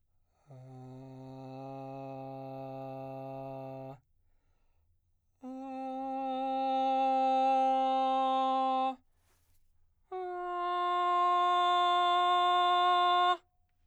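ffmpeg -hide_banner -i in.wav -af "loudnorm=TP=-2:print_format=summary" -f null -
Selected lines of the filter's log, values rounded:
Input Integrated:    -28.8 LUFS
Input True Peak:     -17.8 dBTP
Input LRA:            17.2 LU
Input Threshold:     -40.5 LUFS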